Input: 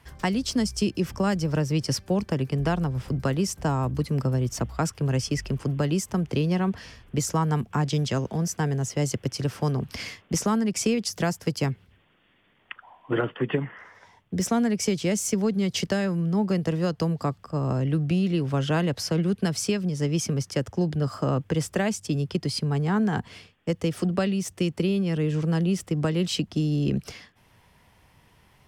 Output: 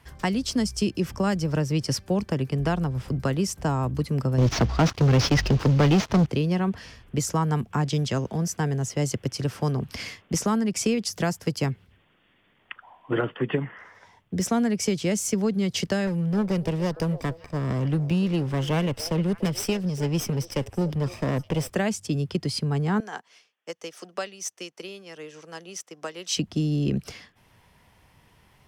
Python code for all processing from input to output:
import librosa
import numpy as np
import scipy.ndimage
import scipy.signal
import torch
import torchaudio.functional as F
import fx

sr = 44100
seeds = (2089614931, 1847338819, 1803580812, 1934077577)

y = fx.chain(x, sr, fx.cvsd(bps=32000),
    fx.leveller(passes=3), at=(4.38, 6.26))
y = fx.chain(y, sr, fx.lower_of_two(delay_ms=0.36),
    fx.echo_stepped(ms=291, hz=550.0, octaves=1.4, feedback_pct=70, wet_db=-12), at=(16.07, 21.7))
y = fx.chain(y, sr, fx.highpass(hz=580.0, slope=12),
    fx.peak_eq(hz=6000.0, db=10.0, octaves=0.29),
    fx.upward_expand(threshold_db=-49.0, expansion=1.5), at=(23.0, 26.37))